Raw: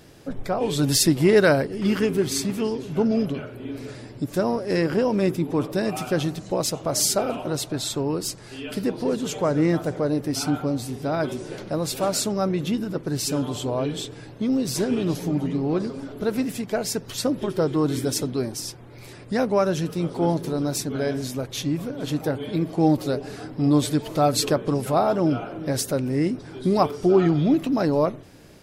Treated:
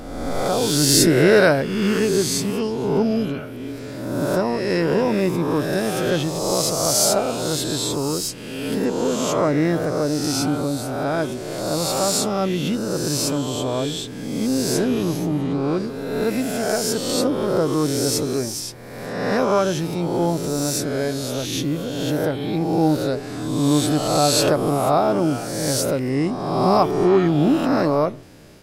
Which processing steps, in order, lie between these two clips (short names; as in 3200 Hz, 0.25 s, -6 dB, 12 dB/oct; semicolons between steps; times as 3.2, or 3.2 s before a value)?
spectral swells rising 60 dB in 1.39 s